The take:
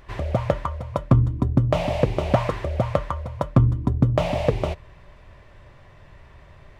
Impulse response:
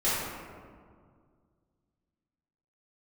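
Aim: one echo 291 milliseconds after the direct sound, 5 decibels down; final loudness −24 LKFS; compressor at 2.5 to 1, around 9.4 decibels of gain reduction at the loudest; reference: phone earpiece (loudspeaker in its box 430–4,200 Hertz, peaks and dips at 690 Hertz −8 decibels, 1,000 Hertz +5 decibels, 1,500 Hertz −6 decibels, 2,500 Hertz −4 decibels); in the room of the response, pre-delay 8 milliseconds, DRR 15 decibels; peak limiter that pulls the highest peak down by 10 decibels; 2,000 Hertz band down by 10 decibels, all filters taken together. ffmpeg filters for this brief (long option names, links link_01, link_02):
-filter_complex "[0:a]equalizer=frequency=2000:width_type=o:gain=-8.5,acompressor=threshold=-27dB:ratio=2.5,alimiter=limit=-21dB:level=0:latency=1,aecho=1:1:291:0.562,asplit=2[link_01][link_02];[1:a]atrim=start_sample=2205,adelay=8[link_03];[link_02][link_03]afir=irnorm=-1:irlink=0,volume=-27.5dB[link_04];[link_01][link_04]amix=inputs=2:normalize=0,highpass=430,equalizer=frequency=690:width_type=q:width=4:gain=-8,equalizer=frequency=1000:width_type=q:width=4:gain=5,equalizer=frequency=1500:width_type=q:width=4:gain=-6,equalizer=frequency=2500:width_type=q:width=4:gain=-4,lowpass=frequency=4200:width=0.5412,lowpass=frequency=4200:width=1.3066,volume=16dB"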